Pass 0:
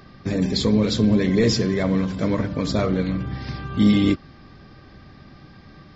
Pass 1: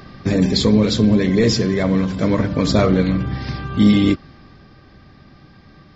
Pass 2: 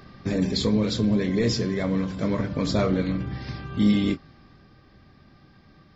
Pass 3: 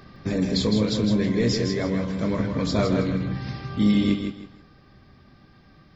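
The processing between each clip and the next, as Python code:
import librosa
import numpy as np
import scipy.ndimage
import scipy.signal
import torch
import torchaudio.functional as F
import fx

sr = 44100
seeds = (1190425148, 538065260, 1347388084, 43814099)

y1 = fx.rider(x, sr, range_db=10, speed_s=2.0)
y1 = y1 * 10.0 ** (3.5 / 20.0)
y2 = fx.doubler(y1, sr, ms=25.0, db=-11.0)
y2 = y2 * 10.0 ** (-8.0 / 20.0)
y3 = fx.echo_feedback(y2, sr, ms=160, feedback_pct=27, wet_db=-6)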